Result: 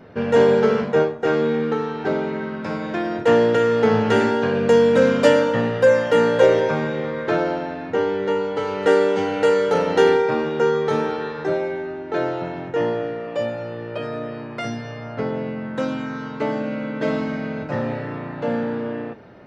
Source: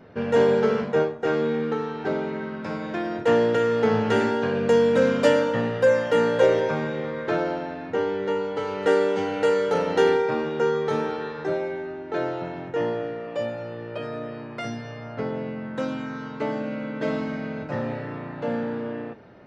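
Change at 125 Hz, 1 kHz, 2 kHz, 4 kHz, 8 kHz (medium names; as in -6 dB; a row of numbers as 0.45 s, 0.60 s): +4.0 dB, +4.0 dB, +4.0 dB, +4.0 dB, no reading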